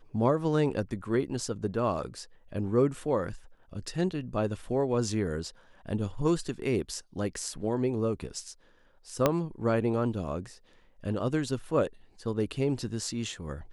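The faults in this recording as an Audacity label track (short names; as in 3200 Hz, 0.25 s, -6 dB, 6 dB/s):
9.260000	9.260000	pop -9 dBFS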